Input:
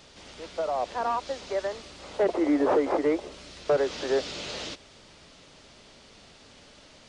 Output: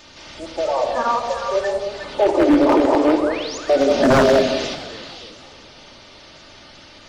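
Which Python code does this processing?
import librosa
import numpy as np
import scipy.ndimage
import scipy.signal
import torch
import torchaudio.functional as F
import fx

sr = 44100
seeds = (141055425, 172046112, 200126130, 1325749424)

y = fx.spec_quant(x, sr, step_db=30)
y = fx.cheby1_bandstop(y, sr, low_hz=200.0, high_hz=410.0, order=2, at=(1.11, 1.91))
y = fx.spec_paint(y, sr, seeds[0], shape='rise', start_s=3.12, length_s=0.46, low_hz=690.0, high_hz=7300.0, level_db=-41.0)
y = fx.small_body(y, sr, hz=(220.0, 650.0), ring_ms=30, db=17, at=(3.89, 4.41))
y = fx.echo_stepped(y, sr, ms=183, hz=540.0, octaves=1.4, feedback_pct=70, wet_db=-2.5)
y = fx.room_shoebox(y, sr, seeds[1], volume_m3=3000.0, walls='furnished', distance_m=2.6)
y = 10.0 ** (-14.0 / 20.0) * (np.abs((y / 10.0 ** (-14.0 / 20.0) + 3.0) % 4.0 - 2.0) - 1.0)
y = fx.echo_warbled(y, sr, ms=306, feedback_pct=55, rate_hz=2.8, cents=195, wet_db=-21.5)
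y = y * librosa.db_to_amplitude(6.5)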